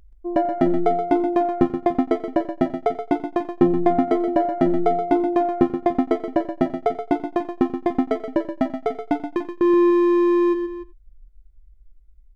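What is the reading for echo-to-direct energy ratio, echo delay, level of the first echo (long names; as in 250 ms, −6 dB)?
−8.0 dB, 89 ms, −20.5 dB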